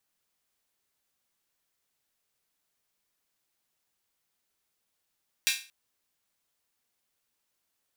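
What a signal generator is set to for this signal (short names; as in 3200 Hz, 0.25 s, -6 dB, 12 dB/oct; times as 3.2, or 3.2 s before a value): open hi-hat length 0.23 s, high-pass 2400 Hz, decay 0.35 s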